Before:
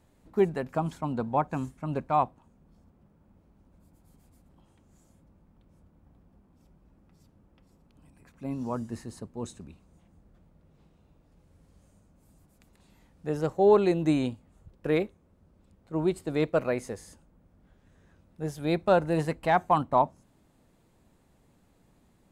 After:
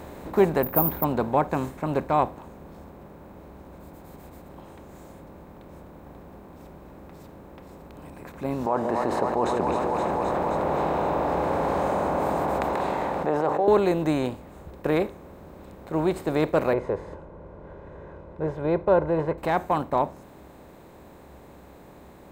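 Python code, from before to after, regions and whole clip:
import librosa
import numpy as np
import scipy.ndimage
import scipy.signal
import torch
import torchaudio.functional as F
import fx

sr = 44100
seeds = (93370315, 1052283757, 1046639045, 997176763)

y = fx.chain(x, sr, fx.spacing_loss(db_at_10k=34),
    fx.resample_bad(factor=3, down='filtered', up='zero_stuff'), at=(0.63, 1.04))
y = fx.chain(y, sr, fx.bandpass_q(hz=830.0, q=2.3),
    fx.echo_split(split_hz=550.0, low_ms=156, high_ms=262, feedback_pct=52, wet_db=-14.0),
    fx.env_flatten(amount_pct=70), at=(8.66, 13.68))
y = fx.chain(y, sr, fx.lowpass(hz=1100.0, slope=12),
    fx.comb(ms=2.0, depth=0.68), at=(16.73, 19.38))
y = fx.bin_compress(y, sr, power=0.6)
y = fx.peak_eq(y, sr, hz=68.0, db=14.0, octaves=0.31)
y = fx.rider(y, sr, range_db=10, speed_s=2.0)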